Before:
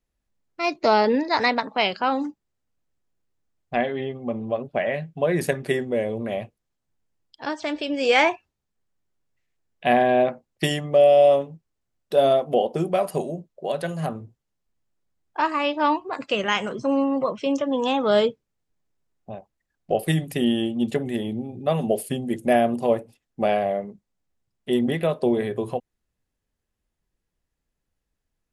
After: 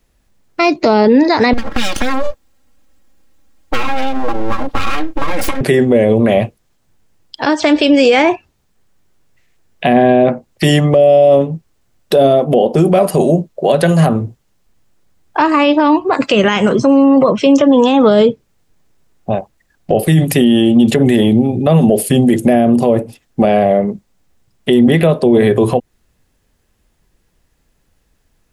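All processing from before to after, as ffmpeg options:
ffmpeg -i in.wav -filter_complex "[0:a]asettb=1/sr,asplit=3[link_01][link_02][link_03];[link_01]atrim=end=1.534[link_04];[link_02]atrim=start=1.53:end=5.61,asetpts=PTS-STARTPTS,afade=type=in:duration=0.004:curve=qsin,afade=type=out:start_time=4.076:duration=0.004:curve=qsin,aeval=exprs='abs(val(0))':channel_layout=same,aecho=1:1:3.7:0.98,atrim=end_sample=179928,acompressor=threshold=-28dB:ratio=20:attack=3.2:release=140:knee=1:detection=peak[link_05];[link_03]atrim=start=5.606[link_06];[link_04][link_05]acrossfade=duration=0.004:curve1=hsin:curve2=qsin[link_07];[link_07][link_06]acrossfade=duration=0.004:curve1=qsin:curve2=hsin,acrossover=split=430[link_08][link_09];[link_09]acompressor=threshold=-31dB:ratio=3[link_10];[link_08][link_10]amix=inputs=2:normalize=0,alimiter=level_in=21dB:limit=-1dB:release=50:level=0:latency=1,volume=-1dB" out.wav

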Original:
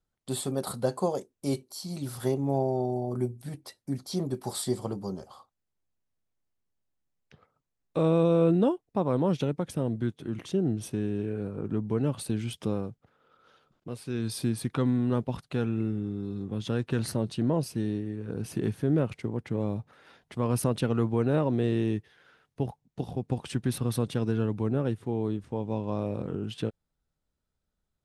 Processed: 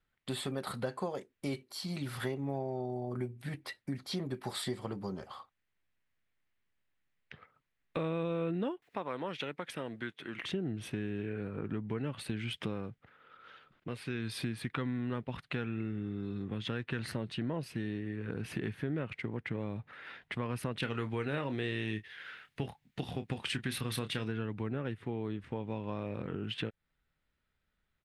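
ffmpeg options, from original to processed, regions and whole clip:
ffmpeg -i in.wav -filter_complex "[0:a]asettb=1/sr,asplit=3[link_01][link_02][link_03];[link_01]atrim=end=8.824[link_04];[link_02]atrim=start=8.82:end=10.44,asetpts=PTS-STARTPTS,afade=type=in:duration=0.004:curve=qsin,afade=type=out:start_time=1.616:duration=0.004:curve=qsin,highpass=frequency=730:poles=1,acompressor=mode=upward:threshold=-51dB:ratio=2.5:attack=3.2:release=140:knee=2.83:detection=peak[link_05];[link_03]atrim=start=10.436[link_06];[link_04][link_05]acrossfade=duration=0.004:curve1=hsin:curve2=qsin[link_07];[link_07][link_06]acrossfade=duration=0.004:curve1=qsin:curve2=hsin,asettb=1/sr,asplit=3[link_08][link_09][link_10];[link_08]atrim=end=20.804[link_11];[link_09]atrim=start=20.8:end=24.28,asetpts=PTS-STARTPTS,afade=type=in:duration=0.004:curve=qsin,afade=type=out:start_time=3.476:duration=0.004:curve=qsin,highshelf=frequency=2500:gain=11,asplit=2[link_12][link_13];[link_13]adelay=28,volume=-11dB[link_14];[link_12][link_14]amix=inputs=2:normalize=0,atrim=end_sample=153468[link_15];[link_10]atrim=start=24.276[link_16];[link_11][link_15]acrossfade=duration=0.004:curve1=hsin:curve2=qsin[link_17];[link_17][link_16]acrossfade=duration=0.004:curve1=qsin:curve2=hsin,firequalizer=gain_entry='entry(740,0);entry(1900,13);entry(5800,-6)':delay=0.05:min_phase=1,acompressor=threshold=-35dB:ratio=3" out.wav

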